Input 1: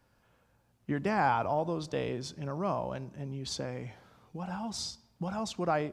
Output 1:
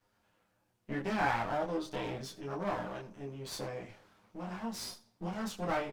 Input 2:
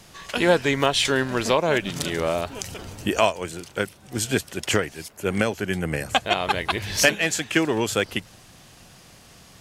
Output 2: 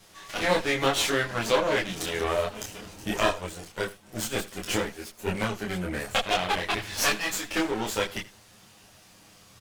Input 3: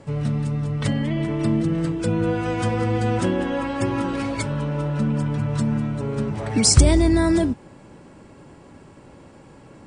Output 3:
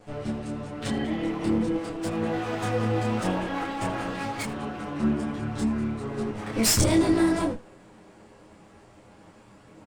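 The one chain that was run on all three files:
comb filter that takes the minimum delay 9.7 ms; bass shelf 110 Hz -6.5 dB; chorus voices 6, 0.82 Hz, delay 25 ms, depth 3.3 ms; on a send: delay 80 ms -18.5 dB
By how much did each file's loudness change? -3.5 LU, -4.5 LU, -5.0 LU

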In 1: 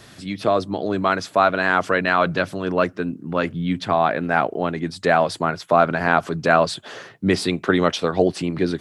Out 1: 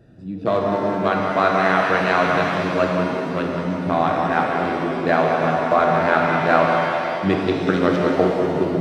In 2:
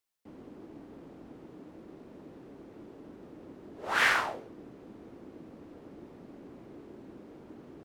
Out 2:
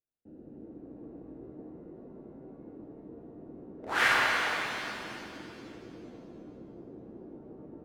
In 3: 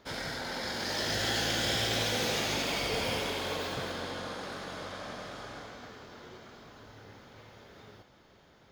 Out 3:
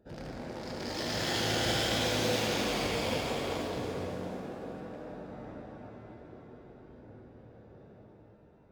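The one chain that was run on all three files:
local Wiener filter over 41 samples; tape echo 186 ms, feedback 71%, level -5 dB, low-pass 2.4 kHz; pitch-shifted reverb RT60 2.1 s, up +7 st, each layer -8 dB, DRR 1 dB; trim -1.5 dB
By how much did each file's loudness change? +1.5 LU, -0.5 LU, -0.5 LU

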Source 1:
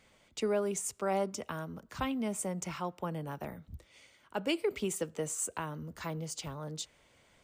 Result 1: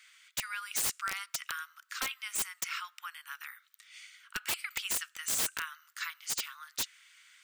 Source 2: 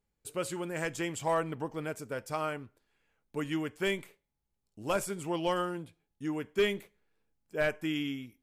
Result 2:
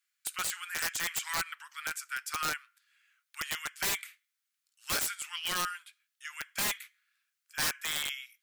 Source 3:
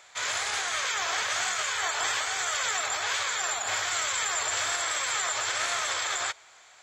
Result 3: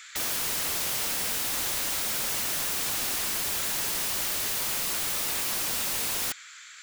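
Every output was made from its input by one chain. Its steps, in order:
steep high-pass 1.3 kHz 48 dB/octave; integer overflow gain 33 dB; trim +8.5 dB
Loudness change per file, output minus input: +1.0 LU, +1.0 LU, +1.0 LU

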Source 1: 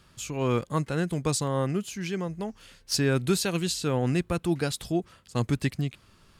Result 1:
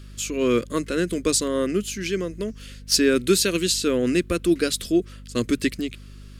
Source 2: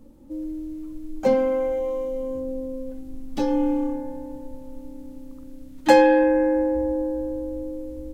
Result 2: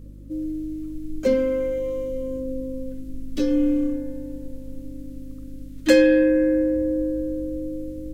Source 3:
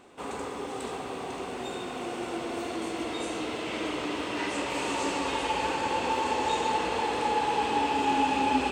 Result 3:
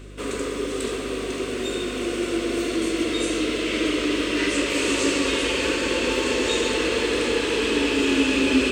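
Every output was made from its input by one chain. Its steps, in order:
static phaser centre 340 Hz, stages 4; hum 50 Hz, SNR 18 dB; normalise loudness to -23 LUFS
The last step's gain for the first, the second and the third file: +8.5 dB, +3.0 dB, +10.5 dB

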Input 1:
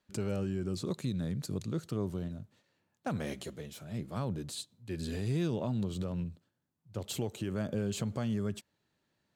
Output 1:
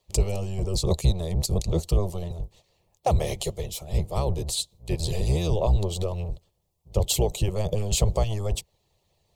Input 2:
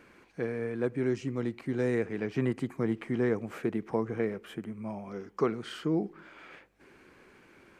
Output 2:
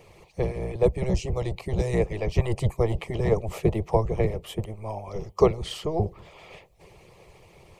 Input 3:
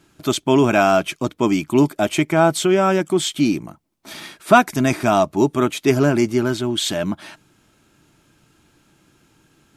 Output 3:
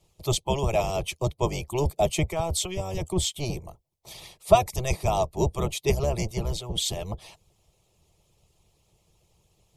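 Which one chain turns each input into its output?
octave divider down 1 oct, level +2 dB; harmonic-percussive split harmonic -15 dB; static phaser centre 630 Hz, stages 4; normalise loudness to -27 LUFS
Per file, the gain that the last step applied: +16.0 dB, +14.0 dB, -1.5 dB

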